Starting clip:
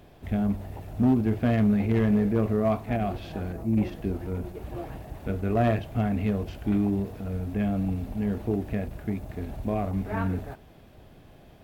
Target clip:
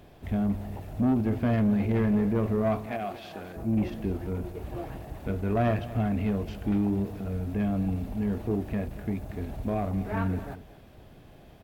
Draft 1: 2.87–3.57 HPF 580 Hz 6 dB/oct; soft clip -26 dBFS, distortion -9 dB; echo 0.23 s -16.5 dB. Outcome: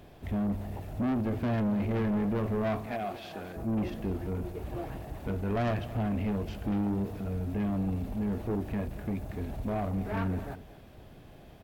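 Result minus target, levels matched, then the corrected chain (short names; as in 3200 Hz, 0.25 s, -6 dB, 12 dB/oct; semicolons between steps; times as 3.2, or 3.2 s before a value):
soft clip: distortion +9 dB
2.87–3.57 HPF 580 Hz 6 dB/oct; soft clip -18 dBFS, distortion -18 dB; echo 0.23 s -16.5 dB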